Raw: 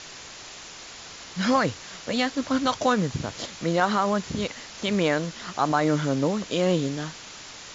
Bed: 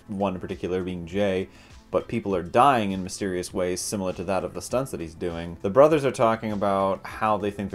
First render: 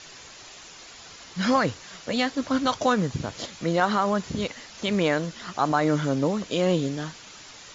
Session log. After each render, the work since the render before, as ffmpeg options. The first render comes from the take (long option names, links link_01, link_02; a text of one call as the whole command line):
ffmpeg -i in.wav -af "afftdn=noise_reduction=6:noise_floor=-43" out.wav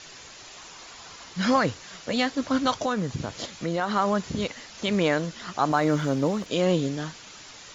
ffmpeg -i in.wav -filter_complex "[0:a]asettb=1/sr,asplit=3[link_01][link_02][link_03];[link_01]atrim=end=0.544[link_04];[link_02]atrim=start=0.54:end=1.29,asetpts=PTS-STARTPTS,afade=type=in:duration=0.004:curve=qsin,afade=type=out:start_time=0.746:duration=0.004:curve=qsin,equalizer=frequency=1000:width_type=o:width=0.77:gain=5.5[link_05];[link_03]atrim=start=1.286[link_06];[link_04][link_05]acrossfade=duration=0.004:curve1=hsin:curve2=qsin[link_07];[link_07][link_06]acrossfade=duration=0.004:curve1=qsin:curve2=hsin,asettb=1/sr,asplit=3[link_08][link_09][link_10];[link_08]atrim=end=2.774[link_11];[link_09]atrim=start=2.77:end=3.96,asetpts=PTS-STARTPTS,afade=type=in:duration=0.004:curve=qsin,afade=type=out:start_time=1.186:duration=0.004:curve=qsin,acompressor=threshold=-25dB:ratio=2:attack=3.2:release=140:knee=1:detection=peak[link_12];[link_10]atrim=start=3.956[link_13];[link_11][link_12]acrossfade=duration=0.004:curve1=hsin:curve2=qsin[link_14];[link_14][link_13]acrossfade=duration=0.004:curve1=qsin:curve2=hsin,asettb=1/sr,asplit=3[link_15][link_16][link_17];[link_15]atrim=end=5.714[link_18];[link_16]atrim=start=5.71:end=6.46,asetpts=PTS-STARTPTS,afade=type=in:duration=0.004:curve=qsin,afade=type=out:start_time=0.746:duration=0.004:curve=qsin,aeval=exprs='sgn(val(0))*max(abs(val(0))-0.00316,0)':channel_layout=same[link_19];[link_17]atrim=start=6.456[link_20];[link_18][link_19]acrossfade=duration=0.004:curve1=hsin:curve2=qsin[link_21];[link_21][link_20]acrossfade=duration=0.004:curve1=qsin:curve2=hsin" out.wav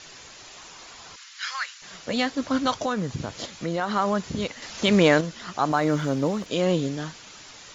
ffmpeg -i in.wav -filter_complex "[0:a]asplit=3[link_01][link_02][link_03];[link_01]afade=type=out:start_time=1.15:duration=0.02[link_04];[link_02]highpass=frequency=1400:width=0.5412,highpass=frequency=1400:width=1.3066,afade=type=in:start_time=1.15:duration=0.02,afade=type=out:start_time=1.81:duration=0.02[link_05];[link_03]afade=type=in:start_time=1.81:duration=0.02[link_06];[link_04][link_05][link_06]amix=inputs=3:normalize=0,asettb=1/sr,asplit=3[link_07][link_08][link_09];[link_07]atrim=end=4.624[link_10];[link_08]atrim=start=4.62:end=5.21,asetpts=PTS-STARTPTS,afade=type=in:duration=0.004:curve=qsin,afade=type=out:start_time=0.586:duration=0.004:curve=qsin,acontrast=50[link_11];[link_09]atrim=start=5.206[link_12];[link_10][link_11]acrossfade=duration=0.004:curve1=hsin:curve2=qsin[link_13];[link_13][link_12]acrossfade=duration=0.004:curve1=qsin:curve2=hsin" out.wav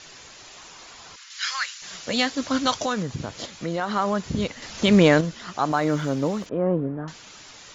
ffmpeg -i in.wav -filter_complex "[0:a]asettb=1/sr,asplit=3[link_01][link_02][link_03];[link_01]atrim=end=1.304[link_04];[link_02]atrim=start=1.3:end=3.03,asetpts=PTS-STARTPTS,afade=type=in:duration=0.004:curve=qsin,afade=type=out:start_time=1.726:duration=0.004:curve=qsin,highshelf=frequency=2500:gain=7.5[link_05];[link_03]atrim=start=3.026[link_06];[link_04][link_05]acrossfade=duration=0.004:curve1=hsin:curve2=qsin[link_07];[link_07][link_06]acrossfade=duration=0.004:curve1=qsin:curve2=hsin,asettb=1/sr,asplit=3[link_08][link_09][link_10];[link_08]atrim=end=4.254[link_11];[link_09]atrim=start=4.25:end=5.35,asetpts=PTS-STARTPTS,afade=type=in:duration=0.004:curve=qsin,afade=type=out:start_time=1.096:duration=0.004:curve=qsin,lowshelf=frequency=240:gain=6.5[link_12];[link_10]atrim=start=5.346[link_13];[link_11][link_12]acrossfade=duration=0.004:curve1=hsin:curve2=qsin[link_14];[link_14][link_13]acrossfade=duration=0.004:curve1=qsin:curve2=hsin,asettb=1/sr,asplit=3[link_15][link_16][link_17];[link_15]atrim=end=6.494[link_18];[link_16]atrim=start=6.49:end=7.08,asetpts=PTS-STARTPTS,afade=type=in:duration=0.004:curve=qsin,afade=type=out:start_time=0.586:duration=0.004:curve=qsin,lowpass=frequency=1400:width=0.5412,lowpass=frequency=1400:width=1.3066[link_19];[link_17]atrim=start=7.076[link_20];[link_18][link_19]acrossfade=duration=0.004:curve1=hsin:curve2=qsin[link_21];[link_21][link_20]acrossfade=duration=0.004:curve1=qsin:curve2=hsin" out.wav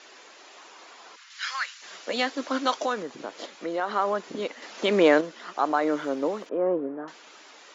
ffmpeg -i in.wav -af "highpass=frequency=300:width=0.5412,highpass=frequency=300:width=1.3066,highshelf=frequency=3800:gain=-12" out.wav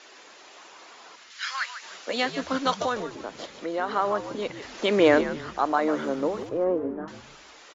ffmpeg -i in.wav -filter_complex "[0:a]asplit=5[link_01][link_02][link_03][link_04][link_05];[link_02]adelay=148,afreqshift=-81,volume=-11dB[link_06];[link_03]adelay=296,afreqshift=-162,volume=-20.6dB[link_07];[link_04]adelay=444,afreqshift=-243,volume=-30.3dB[link_08];[link_05]adelay=592,afreqshift=-324,volume=-39.9dB[link_09];[link_01][link_06][link_07][link_08][link_09]amix=inputs=5:normalize=0" out.wav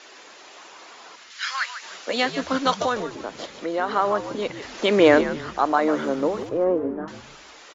ffmpeg -i in.wav -af "volume=3.5dB" out.wav